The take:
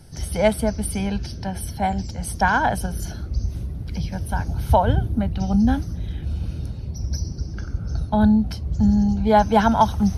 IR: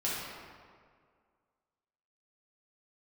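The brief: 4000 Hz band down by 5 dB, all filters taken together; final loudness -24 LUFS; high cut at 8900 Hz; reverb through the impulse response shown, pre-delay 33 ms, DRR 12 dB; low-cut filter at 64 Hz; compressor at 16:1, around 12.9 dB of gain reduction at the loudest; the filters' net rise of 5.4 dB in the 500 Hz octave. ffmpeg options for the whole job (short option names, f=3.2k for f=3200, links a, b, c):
-filter_complex "[0:a]highpass=64,lowpass=8.9k,equalizer=f=500:t=o:g=7.5,equalizer=f=4k:t=o:g=-7,acompressor=threshold=-20dB:ratio=16,asplit=2[a][b];[1:a]atrim=start_sample=2205,adelay=33[c];[b][c]afir=irnorm=-1:irlink=0,volume=-18.5dB[d];[a][d]amix=inputs=2:normalize=0,volume=3.5dB"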